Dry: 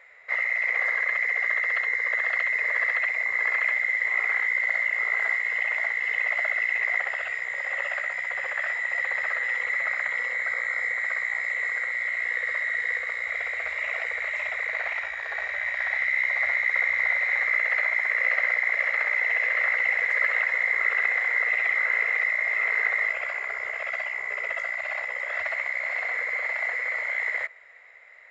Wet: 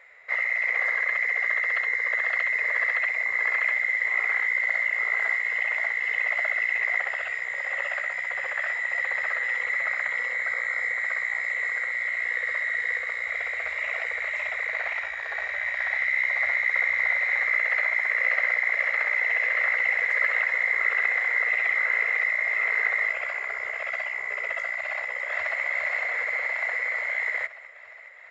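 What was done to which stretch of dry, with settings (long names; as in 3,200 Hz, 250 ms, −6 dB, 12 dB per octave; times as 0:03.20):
0:24.90–0:25.62: delay throw 410 ms, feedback 70%, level −4.5 dB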